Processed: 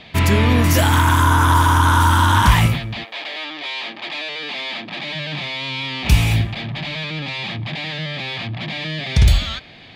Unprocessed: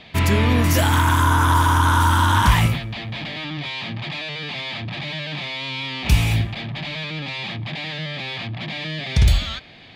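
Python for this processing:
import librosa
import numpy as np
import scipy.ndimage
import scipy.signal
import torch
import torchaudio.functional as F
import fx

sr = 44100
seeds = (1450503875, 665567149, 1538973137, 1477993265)

y = fx.highpass(x, sr, hz=fx.line((3.03, 440.0), (5.14, 190.0)), slope=24, at=(3.03, 5.14), fade=0.02)
y = y * librosa.db_to_amplitude(2.5)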